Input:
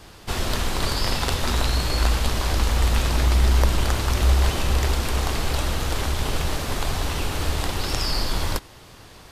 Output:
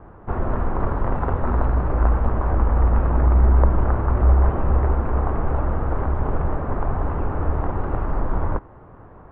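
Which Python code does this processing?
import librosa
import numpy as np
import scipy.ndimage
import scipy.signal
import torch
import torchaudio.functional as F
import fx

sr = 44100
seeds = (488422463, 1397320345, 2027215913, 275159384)

y = scipy.signal.sosfilt(scipy.signal.cheby2(4, 70, 5600.0, 'lowpass', fs=sr, output='sos'), x)
y = y * 10.0 ** (3.0 / 20.0)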